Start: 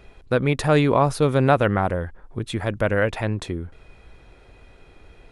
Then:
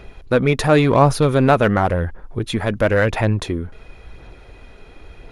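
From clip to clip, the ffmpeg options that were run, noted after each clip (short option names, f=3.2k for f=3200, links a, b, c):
-filter_complex "[0:a]bandreject=f=8k:w=6.1,asplit=2[a][b];[b]asoftclip=type=tanh:threshold=-22dB,volume=-4.5dB[c];[a][c]amix=inputs=2:normalize=0,aphaser=in_gain=1:out_gain=1:delay=4.8:decay=0.28:speed=0.94:type=sinusoidal,volume=2dB"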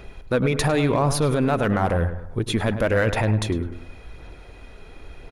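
-filter_complex "[0:a]alimiter=limit=-10.5dB:level=0:latency=1:release=43,crystalizer=i=0.5:c=0,asplit=2[a][b];[b]adelay=103,lowpass=f=2.2k:p=1,volume=-10dB,asplit=2[c][d];[d]adelay=103,lowpass=f=2.2k:p=1,volume=0.41,asplit=2[e][f];[f]adelay=103,lowpass=f=2.2k:p=1,volume=0.41,asplit=2[g][h];[h]adelay=103,lowpass=f=2.2k:p=1,volume=0.41[i];[c][e][g][i]amix=inputs=4:normalize=0[j];[a][j]amix=inputs=2:normalize=0,volume=-1.5dB"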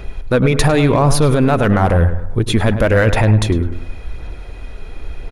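-af "lowshelf=f=72:g=10,volume=6.5dB"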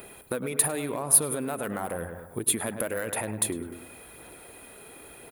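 -af "highpass=230,acompressor=threshold=-21dB:ratio=6,aexciter=amount=9.8:drive=8.9:freq=8.5k,volume=-7.5dB"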